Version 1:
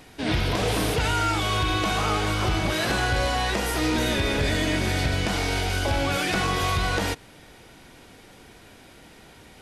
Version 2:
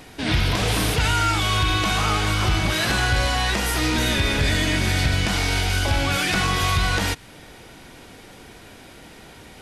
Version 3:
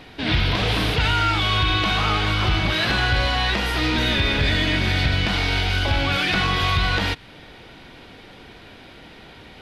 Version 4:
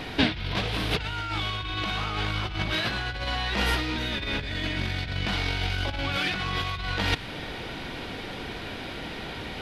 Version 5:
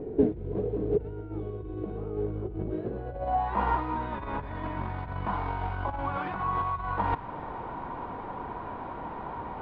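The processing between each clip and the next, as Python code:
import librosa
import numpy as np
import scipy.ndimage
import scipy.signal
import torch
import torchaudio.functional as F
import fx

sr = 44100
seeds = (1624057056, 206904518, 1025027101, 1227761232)

y1 = fx.dynamic_eq(x, sr, hz=480.0, q=0.72, threshold_db=-41.0, ratio=4.0, max_db=-7)
y1 = y1 * librosa.db_to_amplitude(5.0)
y2 = fx.high_shelf_res(y1, sr, hz=5400.0, db=-11.5, q=1.5)
y3 = fx.over_compress(y2, sr, threshold_db=-26.0, ratio=-0.5)
y4 = fx.filter_sweep_lowpass(y3, sr, from_hz=420.0, to_hz=1000.0, start_s=2.88, end_s=3.57, q=6.0)
y4 = y4 * librosa.db_to_amplitude(-4.5)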